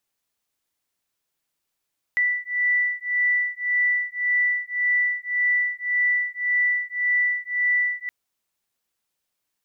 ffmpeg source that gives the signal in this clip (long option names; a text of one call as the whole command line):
ffmpeg -f lavfi -i "aevalsrc='0.0708*(sin(2*PI*1970*t)+sin(2*PI*1971.8*t))':duration=5.92:sample_rate=44100" out.wav